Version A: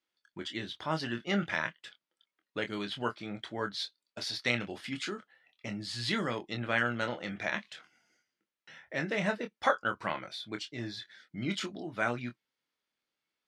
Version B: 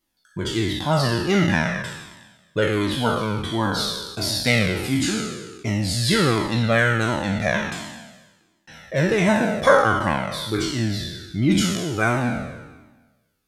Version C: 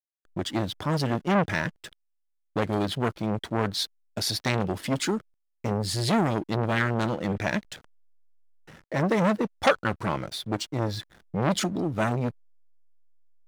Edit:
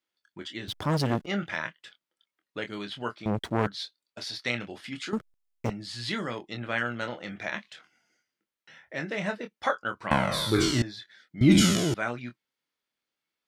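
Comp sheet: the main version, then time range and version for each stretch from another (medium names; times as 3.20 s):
A
0.68–1.26 s: from C
3.26–3.67 s: from C
5.13–5.70 s: from C
10.11–10.82 s: from B
11.41–11.94 s: from B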